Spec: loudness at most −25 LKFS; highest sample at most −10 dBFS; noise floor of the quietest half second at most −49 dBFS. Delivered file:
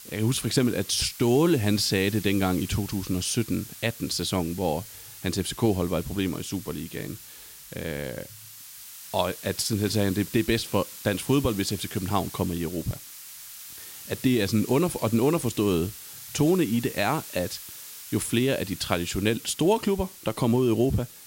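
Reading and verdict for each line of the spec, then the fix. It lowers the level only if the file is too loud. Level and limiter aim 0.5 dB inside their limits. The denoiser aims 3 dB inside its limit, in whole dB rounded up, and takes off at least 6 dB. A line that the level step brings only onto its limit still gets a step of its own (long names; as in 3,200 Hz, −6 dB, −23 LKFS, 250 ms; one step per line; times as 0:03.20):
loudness −26.0 LKFS: in spec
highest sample −7.0 dBFS: out of spec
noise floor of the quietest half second −46 dBFS: out of spec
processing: broadband denoise 6 dB, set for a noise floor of −46 dBFS
brickwall limiter −10.5 dBFS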